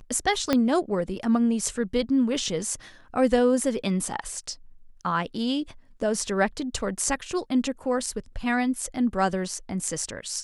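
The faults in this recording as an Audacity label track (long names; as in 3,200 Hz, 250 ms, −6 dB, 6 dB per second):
0.530000	0.530000	click −8 dBFS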